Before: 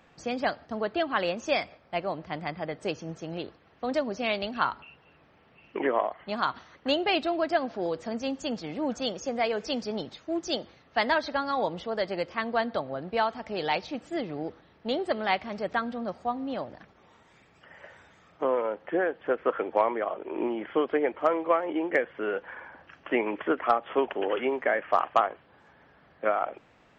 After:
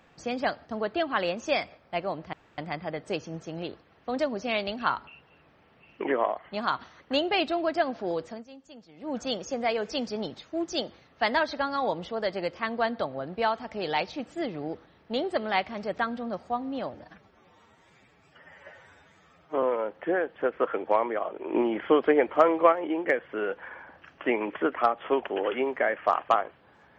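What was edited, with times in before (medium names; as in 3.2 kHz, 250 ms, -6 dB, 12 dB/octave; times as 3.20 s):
2.33 s: insert room tone 0.25 s
7.96–8.95 s: dip -17 dB, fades 0.24 s
16.69–18.48 s: stretch 1.5×
20.40–21.58 s: gain +4.5 dB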